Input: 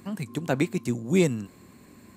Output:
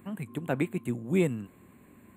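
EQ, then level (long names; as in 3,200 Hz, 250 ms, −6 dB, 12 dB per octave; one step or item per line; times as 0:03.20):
Butterworth band-reject 5,300 Hz, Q 1
−4.0 dB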